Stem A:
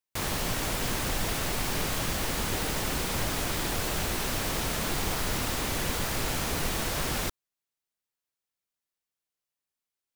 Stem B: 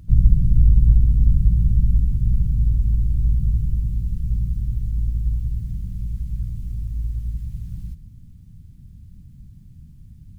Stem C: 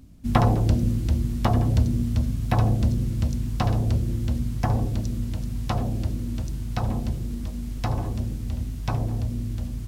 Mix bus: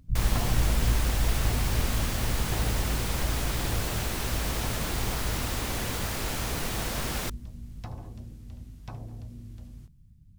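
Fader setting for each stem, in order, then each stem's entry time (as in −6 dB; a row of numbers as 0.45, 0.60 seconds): −2.0, −12.0, −14.5 decibels; 0.00, 0.00, 0.00 seconds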